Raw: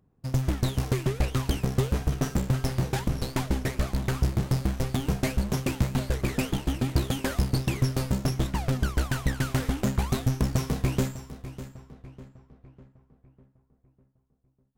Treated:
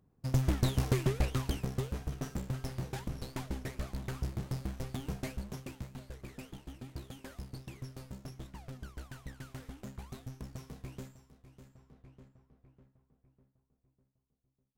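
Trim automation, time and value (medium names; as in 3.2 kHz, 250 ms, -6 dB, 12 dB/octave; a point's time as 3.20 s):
1.04 s -3 dB
1.94 s -11.5 dB
5.19 s -11.5 dB
5.94 s -19.5 dB
11.44 s -19.5 dB
11.95 s -11.5 dB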